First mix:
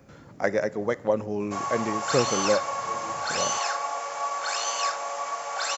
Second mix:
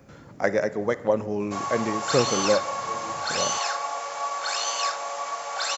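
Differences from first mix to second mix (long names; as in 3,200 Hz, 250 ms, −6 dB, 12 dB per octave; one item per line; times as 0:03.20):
speech: send +8.0 dB
background: add parametric band 3,900 Hz +4.5 dB 0.61 octaves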